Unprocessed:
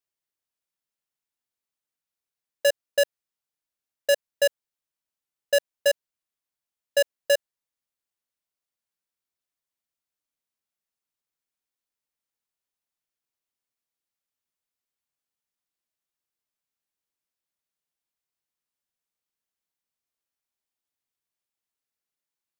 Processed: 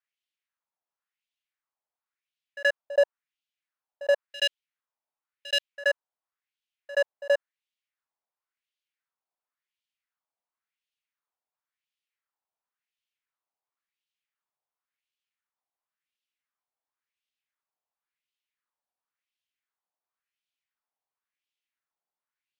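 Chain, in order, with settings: LFO band-pass sine 0.94 Hz 760–3100 Hz; pre-echo 77 ms -17 dB; gain +7.5 dB

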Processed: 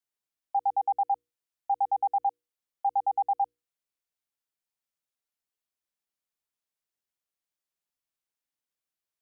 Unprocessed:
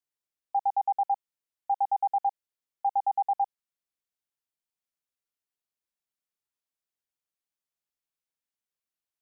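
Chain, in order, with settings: notches 60/120/180/240/300/360/420/480 Hz

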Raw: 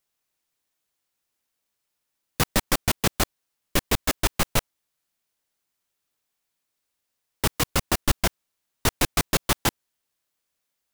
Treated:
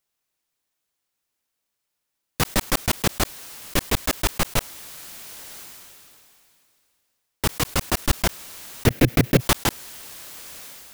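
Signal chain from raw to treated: 8.86–9.41 graphic EQ 125/250/500/1000/2000/4000/8000 Hz +9/+9/+8/-9/+5/-3/-8 dB; sustainer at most 22 dB/s

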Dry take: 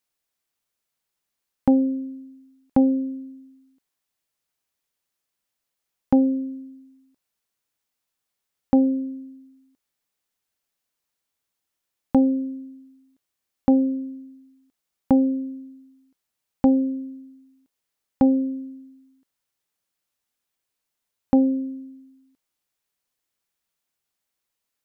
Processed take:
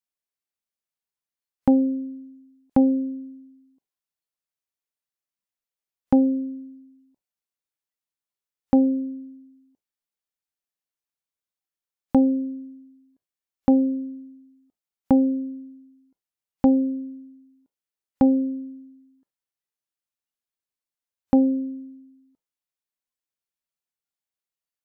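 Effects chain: spectral noise reduction 12 dB

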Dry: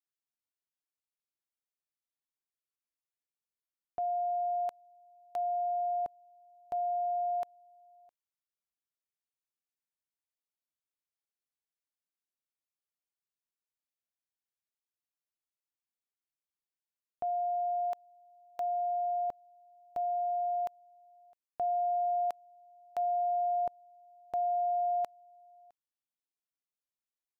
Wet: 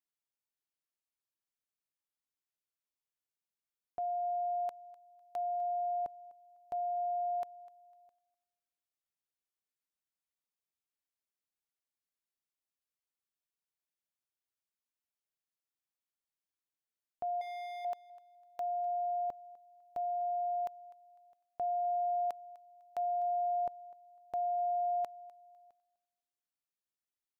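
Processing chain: 17.41–17.85 hard clip -39.5 dBFS, distortion -16 dB; thinning echo 0.251 s, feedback 26%, high-pass 480 Hz, level -19 dB; gain -3 dB

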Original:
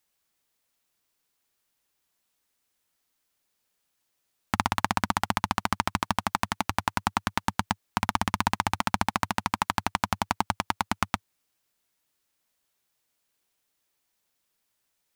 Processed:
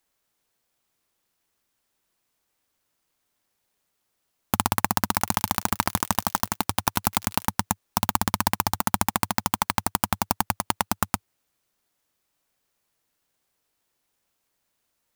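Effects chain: 4.93–7.48 delay with a stepping band-pass 0.175 s, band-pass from 3800 Hz, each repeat 0.7 oct, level -5.5 dB; clock jitter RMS 0.1 ms; gain +2.5 dB

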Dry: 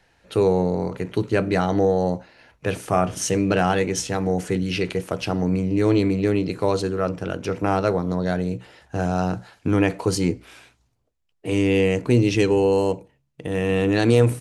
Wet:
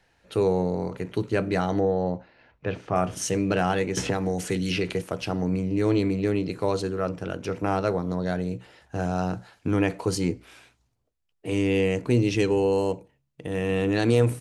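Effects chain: 1.8–2.96 air absorption 200 m; 3.97–5.02 three-band squash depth 100%; gain -4 dB

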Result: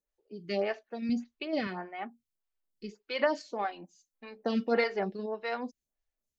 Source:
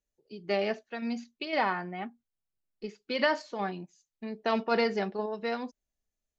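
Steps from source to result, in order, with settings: 1.09–1.67 low shelf 220 Hz +10 dB; 3.64–4.84 comb 3.8 ms, depth 61%; photocell phaser 1.7 Hz; gain +1 dB

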